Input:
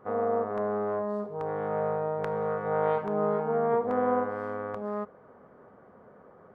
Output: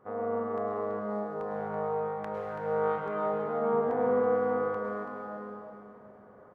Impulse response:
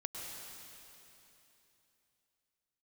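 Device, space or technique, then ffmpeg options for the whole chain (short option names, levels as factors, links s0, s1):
cave: -filter_complex "[0:a]aecho=1:1:331:0.376[s0];[1:a]atrim=start_sample=2205[s1];[s0][s1]afir=irnorm=-1:irlink=0,volume=0.75"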